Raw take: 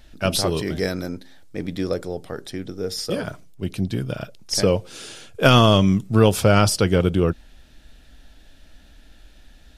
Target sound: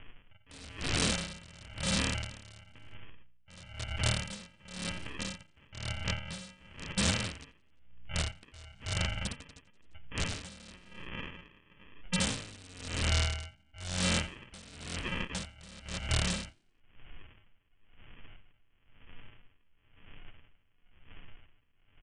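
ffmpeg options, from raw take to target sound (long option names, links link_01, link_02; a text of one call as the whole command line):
ffmpeg -i in.wav -filter_complex "[0:a]highshelf=frequency=3600:gain=-5.5,aecho=1:1:4.3:0.71,aresample=16000,acrusher=samples=9:mix=1:aa=0.000001,aresample=44100,acompressor=threshold=-22dB:ratio=16,asetrate=40440,aresample=44100,atempo=1.09051,crystalizer=i=7.5:c=0,aeval=exprs='(mod(5.01*val(0)+1,2)-1)/5.01':channel_layout=same,equalizer=frequency=1700:width_type=o:width=2.1:gain=-4.5,asoftclip=type=tanh:threshold=-19dB,asetrate=19580,aresample=44100,asplit=2[link_01][link_02];[link_02]asplit=4[link_03][link_04][link_05][link_06];[link_03]adelay=87,afreqshift=60,volume=-20dB[link_07];[link_04]adelay=174,afreqshift=120,volume=-25.8dB[link_08];[link_05]adelay=261,afreqshift=180,volume=-31.7dB[link_09];[link_06]adelay=348,afreqshift=240,volume=-37.5dB[link_10];[link_07][link_08][link_09][link_10]amix=inputs=4:normalize=0[link_11];[link_01][link_11]amix=inputs=2:normalize=0,aeval=exprs='val(0)*pow(10,-24*(0.5-0.5*cos(2*PI*0.99*n/s))/20)':channel_layout=same,volume=-1.5dB" out.wav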